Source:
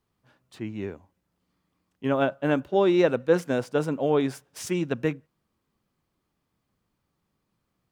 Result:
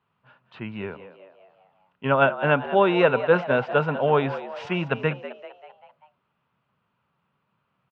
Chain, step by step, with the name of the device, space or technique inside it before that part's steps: frequency-shifting delay pedal into a guitar cabinet (frequency-shifting echo 195 ms, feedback 49%, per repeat +90 Hz, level -14 dB; cabinet simulation 110–3500 Hz, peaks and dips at 140 Hz +5 dB, 310 Hz -10 dB, 620 Hz +3 dB, 960 Hz +8 dB, 1.4 kHz +9 dB, 2.7 kHz +8 dB); trim +2 dB

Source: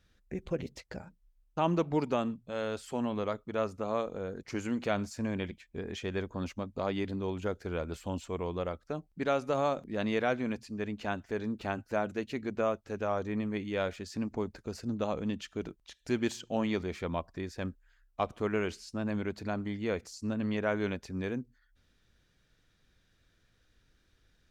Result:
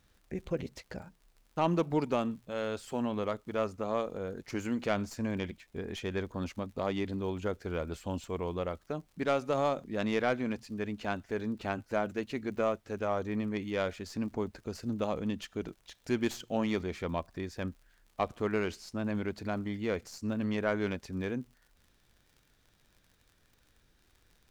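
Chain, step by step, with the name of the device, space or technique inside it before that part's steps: record under a worn stylus (tracing distortion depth 0.048 ms; crackle 59 per s -50 dBFS; pink noise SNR 40 dB)

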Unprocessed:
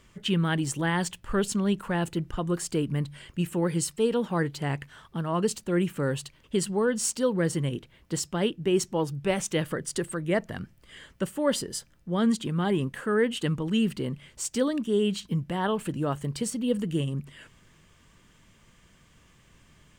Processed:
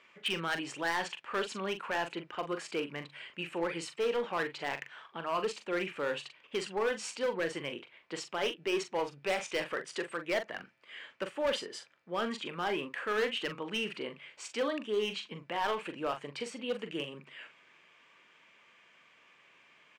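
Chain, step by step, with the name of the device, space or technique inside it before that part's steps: megaphone (band-pass 540–3400 Hz; peaking EQ 2.4 kHz +8.5 dB 0.3 oct; hard clipper -26.5 dBFS, distortion -11 dB; doubling 42 ms -9 dB)

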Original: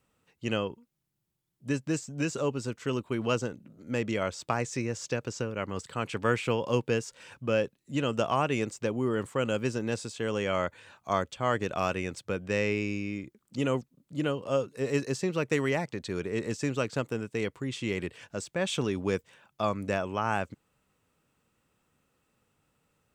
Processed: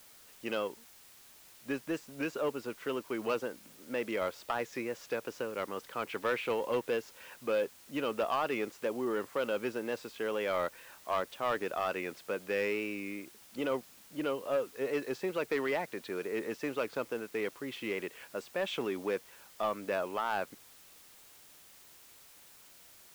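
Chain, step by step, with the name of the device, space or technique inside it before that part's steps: tape answering machine (band-pass 350–2900 Hz; saturation -23.5 dBFS, distortion -14 dB; wow and flutter; white noise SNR 21 dB)

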